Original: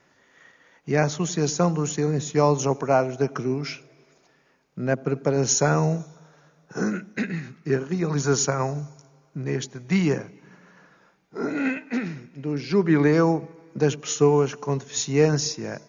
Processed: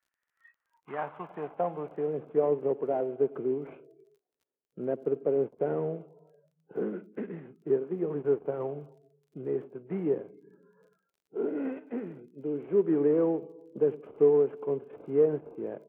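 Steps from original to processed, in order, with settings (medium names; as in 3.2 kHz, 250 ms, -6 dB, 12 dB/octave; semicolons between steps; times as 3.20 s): CVSD coder 16 kbps; spectral noise reduction 26 dB; in parallel at -1 dB: compression, threshold -29 dBFS, peak gain reduction 14.5 dB; on the sum: band-pass sweep 1.6 kHz -> 420 Hz, 0.19–2.51 s; crackle 27 per s -56 dBFS; trim -3 dB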